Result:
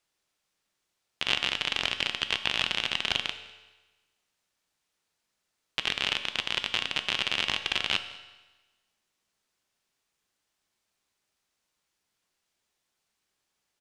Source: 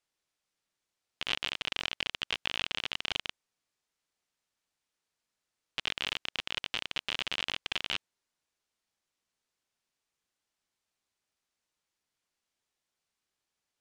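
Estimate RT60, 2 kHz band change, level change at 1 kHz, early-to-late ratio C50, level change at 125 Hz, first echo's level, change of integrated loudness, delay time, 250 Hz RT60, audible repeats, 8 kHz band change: 1.2 s, +6.0 dB, +6.0 dB, 11.0 dB, +6.0 dB, −25.0 dB, +6.0 dB, 201 ms, 1.2 s, 1, +6.0 dB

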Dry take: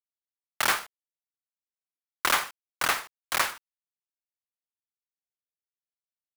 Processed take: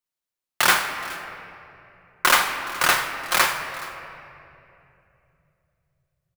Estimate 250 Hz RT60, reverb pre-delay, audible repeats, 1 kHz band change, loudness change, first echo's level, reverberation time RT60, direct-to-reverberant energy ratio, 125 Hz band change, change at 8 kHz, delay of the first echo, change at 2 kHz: 3.9 s, 6 ms, 1, +7.5 dB, +6.5 dB, −19.5 dB, 2.9 s, 2.0 dB, +9.0 dB, +6.5 dB, 421 ms, +8.0 dB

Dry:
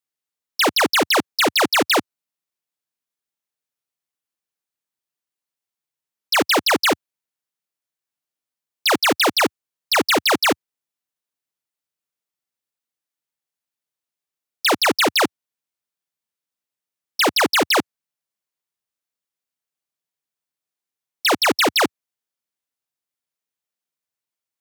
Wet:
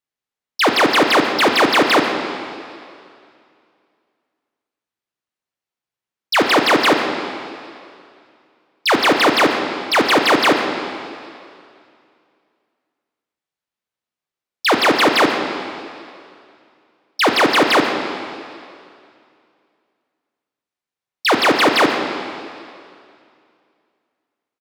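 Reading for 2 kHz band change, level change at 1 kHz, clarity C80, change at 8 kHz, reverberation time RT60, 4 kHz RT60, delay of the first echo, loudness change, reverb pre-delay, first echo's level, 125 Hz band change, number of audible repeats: +4.0 dB, +5.0 dB, 5.0 dB, −3.5 dB, 2.4 s, 2.3 s, 135 ms, +2.5 dB, 5 ms, −13.5 dB, +6.0 dB, 1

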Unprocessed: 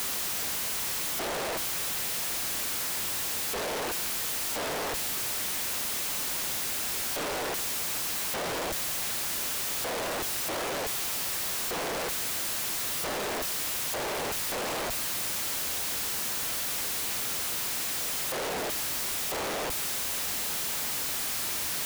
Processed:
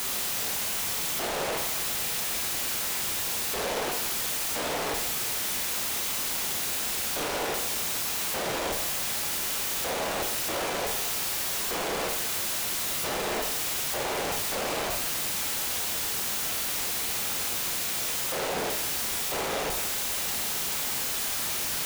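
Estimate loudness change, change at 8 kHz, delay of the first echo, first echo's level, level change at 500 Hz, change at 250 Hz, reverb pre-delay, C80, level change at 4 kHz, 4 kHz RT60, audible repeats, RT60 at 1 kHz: +1.5 dB, +1.5 dB, no echo audible, no echo audible, +2.0 dB, +2.0 dB, 24 ms, 8.5 dB, +2.0 dB, 0.70 s, no echo audible, 0.75 s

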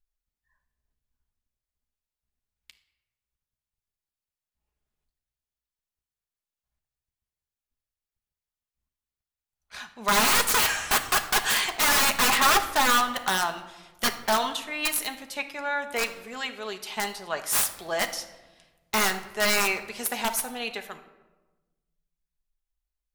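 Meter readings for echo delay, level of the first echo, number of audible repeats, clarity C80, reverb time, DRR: no echo audible, no echo audible, no echo audible, 14.5 dB, 1.2 s, 5.5 dB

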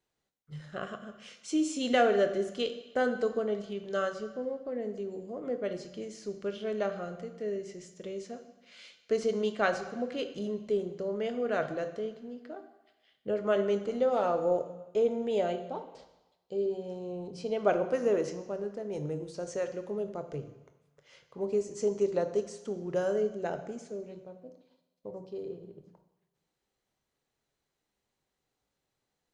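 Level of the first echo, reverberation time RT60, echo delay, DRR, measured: no echo audible, 1.1 s, no echo audible, 8.0 dB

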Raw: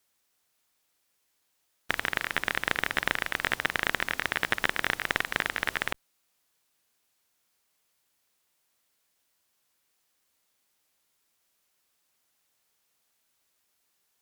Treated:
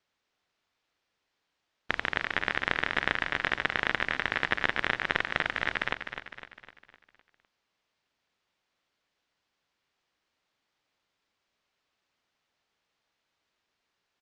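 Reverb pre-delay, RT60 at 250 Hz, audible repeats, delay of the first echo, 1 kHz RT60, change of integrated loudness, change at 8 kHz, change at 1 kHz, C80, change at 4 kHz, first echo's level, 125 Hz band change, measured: no reverb audible, no reverb audible, 5, 254 ms, no reverb audible, −0.5 dB, below −10 dB, +0.5 dB, no reverb audible, −1.5 dB, −8.5 dB, +1.0 dB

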